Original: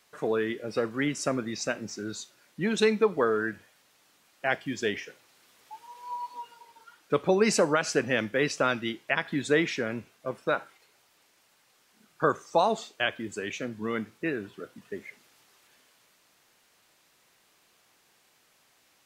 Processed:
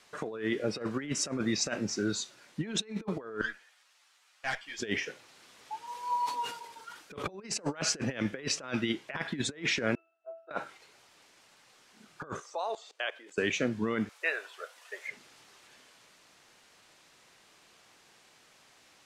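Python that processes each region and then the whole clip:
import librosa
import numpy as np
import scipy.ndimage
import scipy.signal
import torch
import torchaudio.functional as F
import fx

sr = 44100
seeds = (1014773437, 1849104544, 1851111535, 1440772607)

y = fx.chain(x, sr, fx.highpass(hz=960.0, slope=12),
    fx.tube_stage(drive_db=28.0, bias=0.5),
    fx.ensemble(), at=(3.41, 4.8))
y = fx.chain(y, sr, fx.high_shelf(hz=9600.0, db=9.0),
    fx.sustainer(db_per_s=83.0), at=(5.87, 7.33))
y = fx.chain(y, sr, fx.steep_highpass(hz=480.0, slope=36),
    fx.octave_resonator(note='E', decay_s=0.33), at=(9.95, 10.51))
y = fx.chain(y, sr, fx.highpass(hz=440.0, slope=24),
    fx.level_steps(step_db=19), at=(12.4, 13.38))
y = fx.chain(y, sr, fx.steep_highpass(hz=550.0, slope=36),
    fx.high_shelf(hz=9200.0, db=8.5), at=(14.09, 15.08))
y = scipy.signal.sosfilt(scipy.signal.butter(2, 8600.0, 'lowpass', fs=sr, output='sos'), y)
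y = fx.over_compress(y, sr, threshold_db=-32.0, ratio=-0.5)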